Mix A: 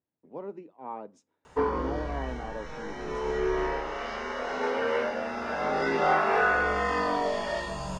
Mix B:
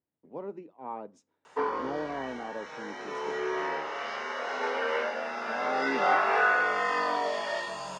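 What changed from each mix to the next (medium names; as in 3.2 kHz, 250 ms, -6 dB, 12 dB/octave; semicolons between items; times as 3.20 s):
background: add frequency weighting A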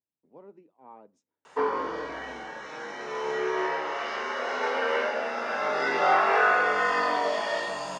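speech -10.5 dB; background: send +11.5 dB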